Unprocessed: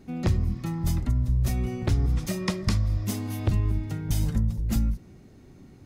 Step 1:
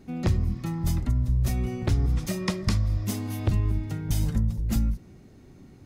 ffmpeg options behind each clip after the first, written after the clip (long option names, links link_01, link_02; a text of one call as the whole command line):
ffmpeg -i in.wav -af anull out.wav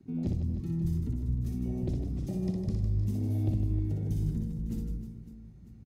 ffmpeg -i in.wav -filter_complex "[0:a]acrossover=split=120|420|1100|2600[link_01][link_02][link_03][link_04][link_05];[link_01]acompressor=threshold=-36dB:ratio=4[link_06];[link_02]acompressor=threshold=-35dB:ratio=4[link_07];[link_03]acompressor=threshold=-52dB:ratio=4[link_08];[link_04]acompressor=threshold=-59dB:ratio=4[link_09];[link_05]acompressor=threshold=-41dB:ratio=4[link_10];[link_06][link_07][link_08][link_09][link_10]amix=inputs=5:normalize=0,afwtdn=0.02,aecho=1:1:60|156|309.6|555.4|948.6:0.631|0.398|0.251|0.158|0.1" out.wav